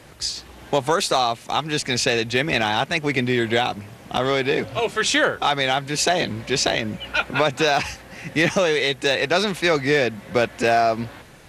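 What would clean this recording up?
clip repair -8 dBFS

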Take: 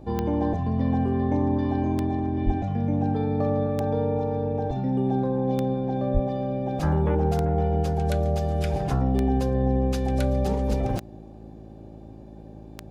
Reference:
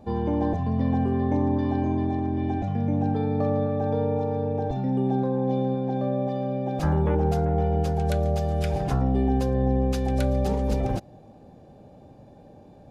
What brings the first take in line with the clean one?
de-click; de-hum 54.1 Hz, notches 7; de-plosive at 2.45/6.13 s

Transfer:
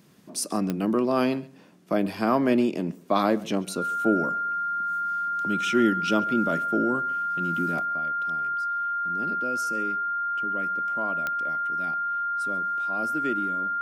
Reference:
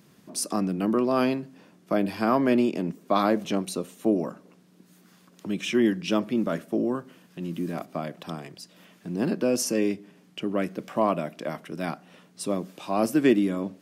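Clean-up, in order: de-click; band-stop 1.4 kHz, Q 30; inverse comb 137 ms -22.5 dB; gain correction +11 dB, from 7.80 s

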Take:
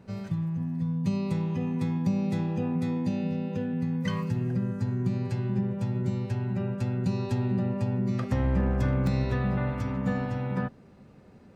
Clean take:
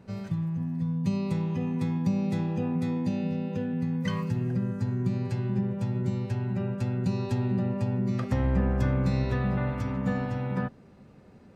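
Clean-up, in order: clip repair -17.5 dBFS; interpolate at 9.07 s, 1.7 ms

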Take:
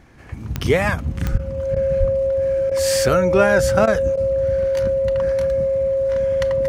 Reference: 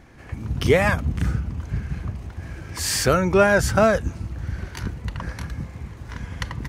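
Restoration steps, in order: de-click; band-stop 540 Hz, Q 30; 1.31–1.43 s: high-pass 140 Hz 24 dB/octave; 1.99–2.11 s: high-pass 140 Hz 24 dB/octave; interpolate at 1.38/1.75/2.70/3.86/4.16 s, 12 ms

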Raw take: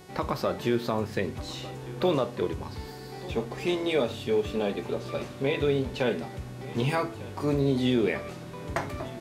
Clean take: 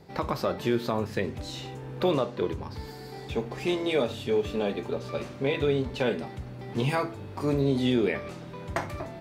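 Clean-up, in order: de-hum 367.9 Hz, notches 35; inverse comb 1198 ms -18.5 dB

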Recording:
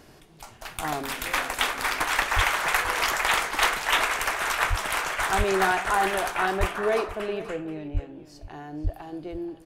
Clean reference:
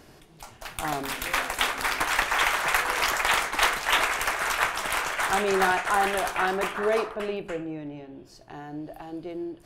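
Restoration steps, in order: de-plosive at 2.35/4.69/5.37/6.59/7.93/8.83 s; inverse comb 481 ms -15.5 dB

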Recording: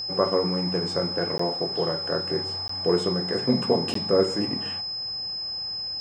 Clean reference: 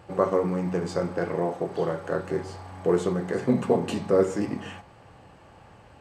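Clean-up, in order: band-stop 5.1 kHz, Q 30; interpolate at 1.38/2.68/3.94 s, 14 ms

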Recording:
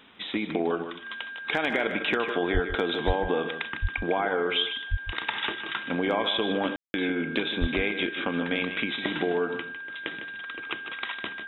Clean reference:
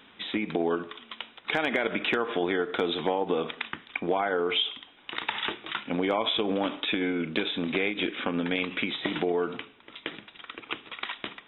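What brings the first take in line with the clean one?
band-stop 1.6 kHz, Q 30; de-plosive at 2.53/3.06/3.81/4.90/7.60 s; room tone fill 6.76–6.94 s; inverse comb 153 ms -9.5 dB

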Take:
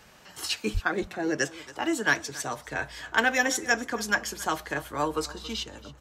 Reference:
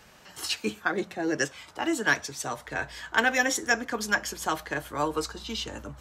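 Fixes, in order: de-plosive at 0.73 s; inverse comb 276 ms -19 dB; gain correction +5.5 dB, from 5.63 s

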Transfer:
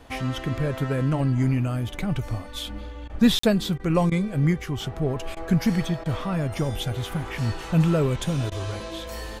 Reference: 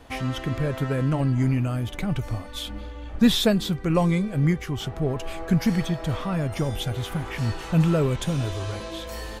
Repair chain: interpolate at 3.39 s, 44 ms; interpolate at 3.08/3.78/4.10/5.35/6.04/8.50 s, 15 ms

